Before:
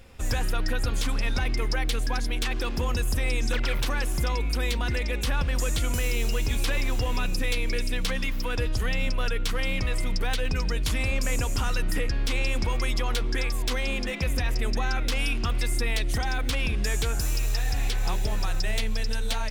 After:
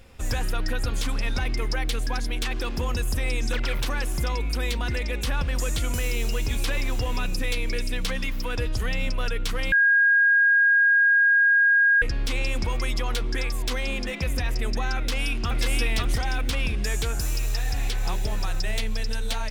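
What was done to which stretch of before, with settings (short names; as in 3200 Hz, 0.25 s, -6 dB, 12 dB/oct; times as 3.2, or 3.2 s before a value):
9.72–12.02 bleep 1630 Hz -15 dBFS
14.96–15.61 echo throw 0.54 s, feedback 25%, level -1 dB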